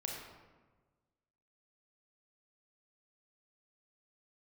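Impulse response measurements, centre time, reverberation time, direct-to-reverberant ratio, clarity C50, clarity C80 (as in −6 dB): 65 ms, 1.3 s, −1.0 dB, 1.5 dB, 3.5 dB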